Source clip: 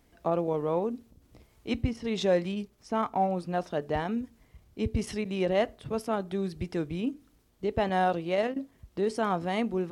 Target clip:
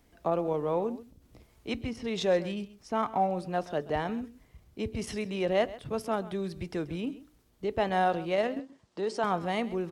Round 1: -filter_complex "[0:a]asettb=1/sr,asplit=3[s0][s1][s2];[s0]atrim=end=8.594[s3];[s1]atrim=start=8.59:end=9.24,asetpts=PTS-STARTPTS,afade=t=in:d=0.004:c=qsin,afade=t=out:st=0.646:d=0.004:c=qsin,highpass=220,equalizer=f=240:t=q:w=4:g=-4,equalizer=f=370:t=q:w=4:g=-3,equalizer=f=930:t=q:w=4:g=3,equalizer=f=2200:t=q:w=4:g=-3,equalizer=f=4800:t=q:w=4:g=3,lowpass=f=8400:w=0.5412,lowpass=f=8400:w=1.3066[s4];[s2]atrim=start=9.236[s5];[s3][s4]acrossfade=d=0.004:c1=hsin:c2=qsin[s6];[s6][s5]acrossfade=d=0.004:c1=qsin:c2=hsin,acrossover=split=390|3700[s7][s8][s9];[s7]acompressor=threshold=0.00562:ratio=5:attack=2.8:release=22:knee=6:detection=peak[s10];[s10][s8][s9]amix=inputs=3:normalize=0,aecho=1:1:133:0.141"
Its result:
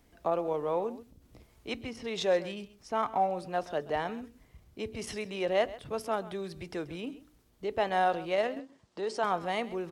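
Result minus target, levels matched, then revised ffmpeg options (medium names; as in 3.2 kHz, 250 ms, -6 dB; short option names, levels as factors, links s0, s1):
compression: peak gain reduction +9 dB
-filter_complex "[0:a]asettb=1/sr,asplit=3[s0][s1][s2];[s0]atrim=end=8.594[s3];[s1]atrim=start=8.59:end=9.24,asetpts=PTS-STARTPTS,afade=t=in:d=0.004:c=qsin,afade=t=out:st=0.646:d=0.004:c=qsin,highpass=220,equalizer=f=240:t=q:w=4:g=-4,equalizer=f=370:t=q:w=4:g=-3,equalizer=f=930:t=q:w=4:g=3,equalizer=f=2200:t=q:w=4:g=-3,equalizer=f=4800:t=q:w=4:g=3,lowpass=f=8400:w=0.5412,lowpass=f=8400:w=1.3066[s4];[s2]atrim=start=9.236[s5];[s3][s4]acrossfade=d=0.004:c1=hsin:c2=qsin[s6];[s6][s5]acrossfade=d=0.004:c1=qsin:c2=hsin,acrossover=split=390|3700[s7][s8][s9];[s7]acompressor=threshold=0.0211:ratio=5:attack=2.8:release=22:knee=6:detection=peak[s10];[s10][s8][s9]amix=inputs=3:normalize=0,aecho=1:1:133:0.141"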